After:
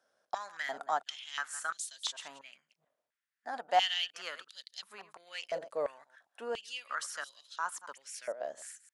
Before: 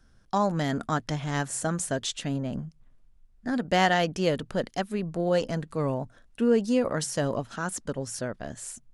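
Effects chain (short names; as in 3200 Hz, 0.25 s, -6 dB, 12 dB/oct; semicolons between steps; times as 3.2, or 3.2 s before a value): reverse delay 0.114 s, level -14 dB; stepped high-pass 2.9 Hz 590–3900 Hz; gain -9 dB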